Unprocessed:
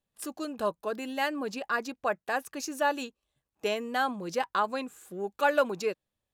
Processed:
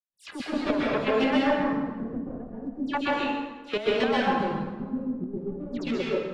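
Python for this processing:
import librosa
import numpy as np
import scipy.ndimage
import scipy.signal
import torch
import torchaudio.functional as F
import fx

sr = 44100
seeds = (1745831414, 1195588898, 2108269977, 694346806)

y = fx.rider(x, sr, range_db=4, speed_s=0.5)
y = fx.leveller(y, sr, passes=5)
y = fx.filter_lfo_lowpass(y, sr, shape='square', hz=0.35, low_hz=210.0, high_hz=3200.0, q=1.1)
y = fx.dispersion(y, sr, late='lows', ms=96.0, hz=2300.0)
y = fx.chopper(y, sr, hz=7.5, depth_pct=65, duty_pct=30)
y = fx.rev_plate(y, sr, seeds[0], rt60_s=1.3, hf_ratio=0.7, predelay_ms=115, drr_db=-5.5)
y = y * 10.0 ** (-7.0 / 20.0)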